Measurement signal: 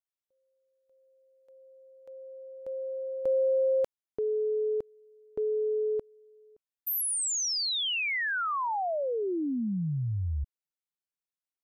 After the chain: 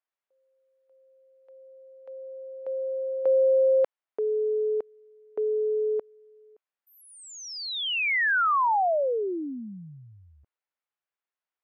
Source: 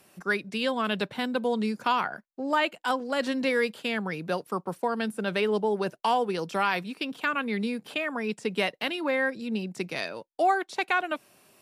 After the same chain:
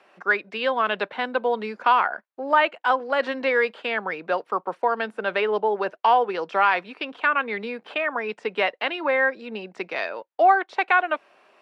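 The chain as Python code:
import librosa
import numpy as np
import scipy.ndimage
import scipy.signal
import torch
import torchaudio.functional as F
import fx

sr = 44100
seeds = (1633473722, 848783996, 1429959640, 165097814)

y = fx.bandpass_edges(x, sr, low_hz=530.0, high_hz=2200.0)
y = y * 10.0 ** (8.0 / 20.0)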